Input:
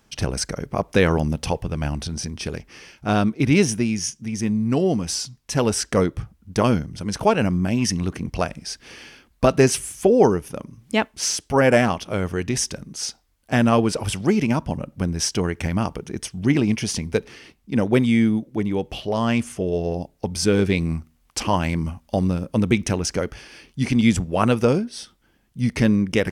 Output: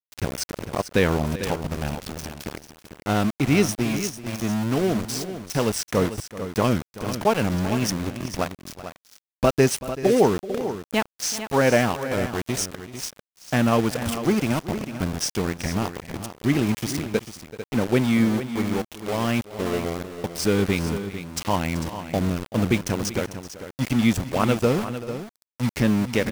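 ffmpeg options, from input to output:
ffmpeg -i in.wav -filter_complex "[0:a]aeval=exprs='val(0)*gte(abs(val(0)),0.0668)':channel_layout=same,asplit=2[link_01][link_02];[link_02]aecho=0:1:382|447:0.15|0.282[link_03];[link_01][link_03]amix=inputs=2:normalize=0,volume=-2.5dB" out.wav

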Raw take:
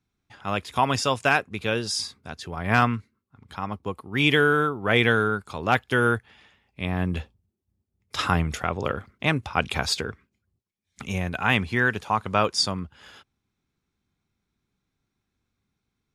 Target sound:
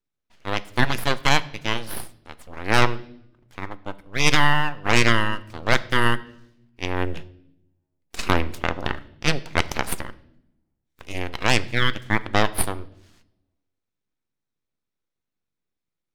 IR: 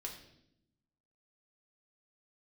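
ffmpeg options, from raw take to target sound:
-filter_complex "[0:a]aeval=exprs='abs(val(0))':channel_layout=same,aeval=exprs='0.668*(cos(1*acos(clip(val(0)/0.668,-1,1)))-cos(1*PI/2))+0.0596*(cos(6*acos(clip(val(0)/0.668,-1,1)))-cos(6*PI/2))+0.0668*(cos(7*acos(clip(val(0)/0.668,-1,1)))-cos(7*PI/2))':channel_layout=same,asplit=2[link_01][link_02];[1:a]atrim=start_sample=2205[link_03];[link_02][link_03]afir=irnorm=-1:irlink=0,volume=-7dB[link_04];[link_01][link_04]amix=inputs=2:normalize=0"

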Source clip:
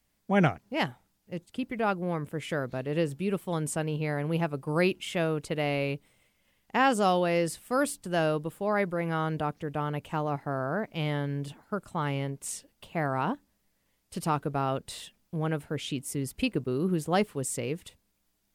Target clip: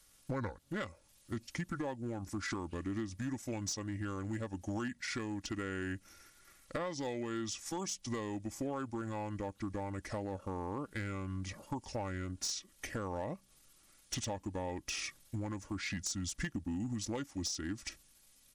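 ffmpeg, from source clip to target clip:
ffmpeg -i in.wav -af "highshelf=frequency=4300:gain=9.5,aecho=1:1:2.4:0.42,acompressor=threshold=-38dB:ratio=16,asetrate=29433,aresample=44100,atempo=1.49831,aeval=exprs='clip(val(0),-1,0.0168)':channel_layout=same,volume=4dB" out.wav

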